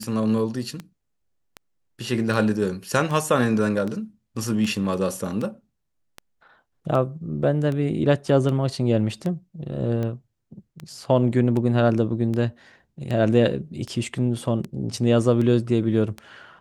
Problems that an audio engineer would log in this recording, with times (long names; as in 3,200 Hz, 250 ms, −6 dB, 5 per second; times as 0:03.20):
scratch tick 78 rpm −18 dBFS